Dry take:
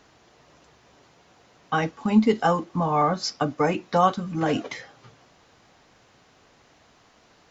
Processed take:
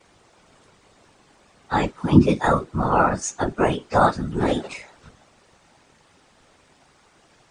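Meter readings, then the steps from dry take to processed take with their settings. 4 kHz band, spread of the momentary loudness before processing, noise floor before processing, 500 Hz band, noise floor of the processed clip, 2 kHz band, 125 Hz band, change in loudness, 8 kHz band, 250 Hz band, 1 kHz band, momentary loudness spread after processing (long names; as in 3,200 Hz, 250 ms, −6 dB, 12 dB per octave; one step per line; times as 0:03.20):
−2.0 dB, 8 LU, −59 dBFS, +2.0 dB, −58 dBFS, +3.5 dB, +5.5 dB, +2.5 dB, can't be measured, +2.5 dB, +2.0 dB, 9 LU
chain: partials spread apart or drawn together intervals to 108%
random phases in short frames
level +4.5 dB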